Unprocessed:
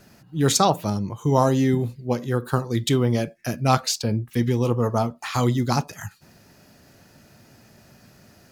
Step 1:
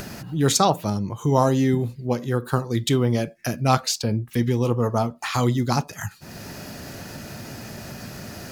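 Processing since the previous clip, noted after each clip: upward compressor, threshold -22 dBFS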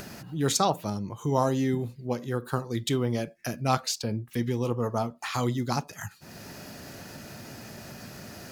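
bass shelf 110 Hz -5 dB; endings held to a fixed fall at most 600 dB/s; trim -5.5 dB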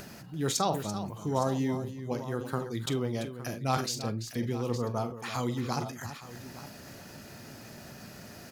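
on a send: multi-tap echo 45/338/863 ms -15/-12/-15 dB; on the sum: decay stretcher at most 87 dB/s; trim -4.5 dB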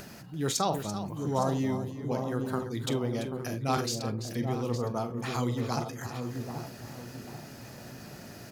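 feedback echo behind a low-pass 785 ms, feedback 35%, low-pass 720 Hz, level -4.5 dB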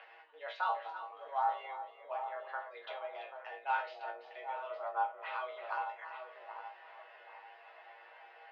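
chord resonator A2 fifth, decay 0.24 s; mistuned SSB +140 Hz 490–3000 Hz; trim +7 dB

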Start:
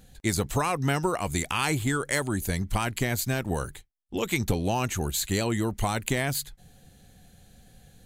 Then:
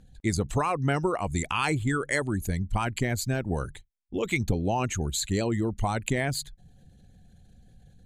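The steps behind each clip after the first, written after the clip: resonances exaggerated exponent 1.5; low-pass 9.6 kHz 12 dB/octave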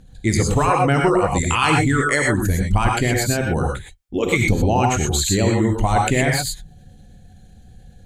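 gated-style reverb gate 140 ms rising, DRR -0.5 dB; trim +7 dB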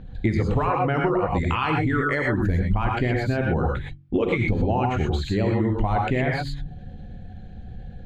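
de-hum 46.83 Hz, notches 7; compression 6:1, threshold -26 dBFS, peak gain reduction 13.5 dB; distance through air 350 m; trim +7.5 dB

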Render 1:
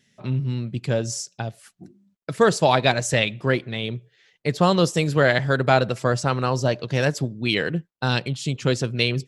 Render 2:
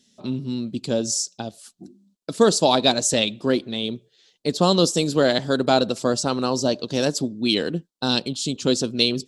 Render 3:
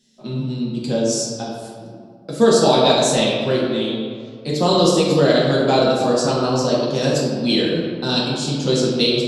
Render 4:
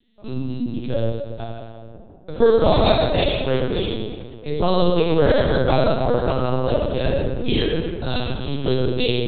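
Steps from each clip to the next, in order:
ten-band graphic EQ 125 Hz -11 dB, 250 Hz +8 dB, 2 kHz -12 dB, 4 kHz +8 dB, 8 kHz +6 dB
reverberation RT60 2.1 s, pre-delay 4 ms, DRR -6.5 dB; trim -3.5 dB
LPC vocoder at 8 kHz pitch kept; trim -1 dB

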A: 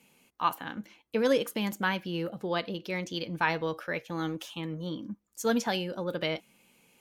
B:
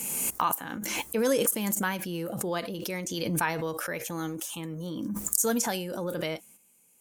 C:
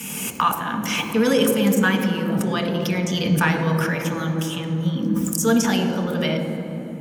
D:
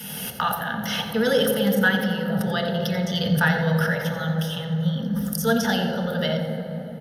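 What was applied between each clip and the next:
gate -56 dBFS, range -8 dB; resonant high shelf 5.7 kHz +14 dB, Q 1.5; swell ahead of each attack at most 25 dB/s; trim -1 dB
reverberation RT60 3.5 s, pre-delay 3 ms, DRR 3 dB
delay 88 ms -12 dB; resampled via 32 kHz; static phaser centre 1.6 kHz, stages 8; trim +2 dB

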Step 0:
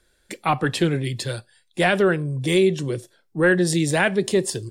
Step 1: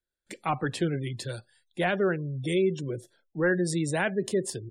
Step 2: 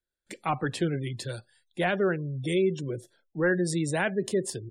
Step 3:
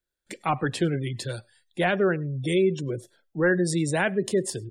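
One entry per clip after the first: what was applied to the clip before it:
gate with hold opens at -53 dBFS; spectral gate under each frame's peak -30 dB strong; dynamic bell 3.3 kHz, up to -3 dB, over -34 dBFS, Q 0.78; trim -7 dB
no audible change
reverberation, pre-delay 85 ms, DRR 27 dB; trim +3 dB

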